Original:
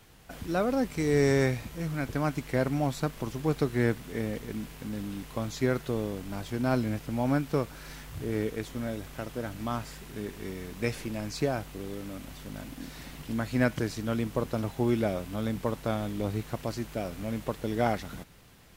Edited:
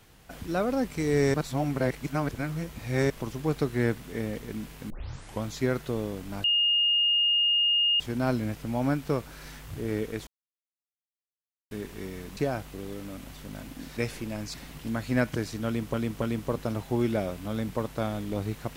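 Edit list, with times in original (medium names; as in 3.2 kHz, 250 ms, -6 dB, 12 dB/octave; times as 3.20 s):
1.34–3.10 s: reverse
4.90 s: tape start 0.52 s
6.44 s: add tone 2.84 kHz -20.5 dBFS 1.56 s
8.71–10.15 s: mute
10.81–11.38 s: move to 12.98 s
14.10–14.38 s: loop, 3 plays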